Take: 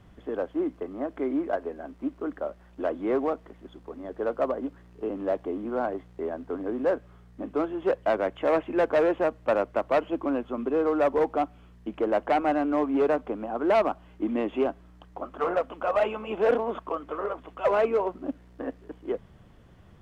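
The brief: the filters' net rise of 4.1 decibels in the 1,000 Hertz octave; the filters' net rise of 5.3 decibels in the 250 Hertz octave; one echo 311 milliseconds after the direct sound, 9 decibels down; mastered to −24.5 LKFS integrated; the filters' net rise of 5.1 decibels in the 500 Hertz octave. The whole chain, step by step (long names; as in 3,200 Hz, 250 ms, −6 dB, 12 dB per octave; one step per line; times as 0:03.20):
parametric band 250 Hz +5 dB
parametric band 500 Hz +4 dB
parametric band 1,000 Hz +3.5 dB
single-tap delay 311 ms −9 dB
level −1.5 dB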